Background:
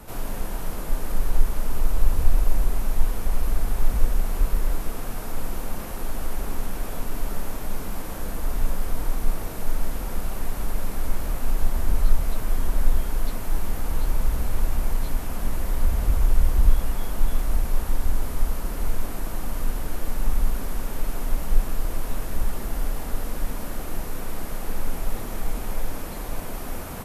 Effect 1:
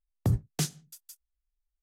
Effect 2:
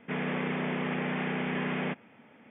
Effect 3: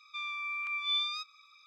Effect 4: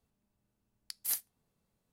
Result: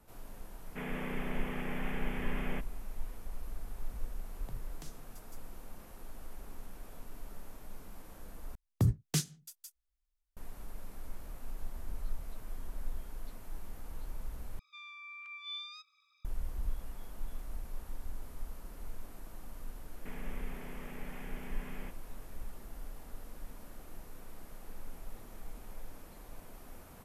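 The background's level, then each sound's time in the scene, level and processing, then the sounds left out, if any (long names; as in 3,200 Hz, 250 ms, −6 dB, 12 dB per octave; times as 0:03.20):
background −19 dB
0:00.67: mix in 2 −8 dB
0:04.23: mix in 1 −11 dB + downward compressor 3 to 1, threshold −39 dBFS
0:08.55: overwrite with 1 −1.5 dB + dynamic equaliser 710 Hz, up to −7 dB, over −52 dBFS, Q 1.2
0:14.59: overwrite with 3 −11.5 dB + high-pass filter 930 Hz
0:19.97: mix in 2 −9.5 dB + downward compressor 4 to 1, threshold −36 dBFS
not used: 4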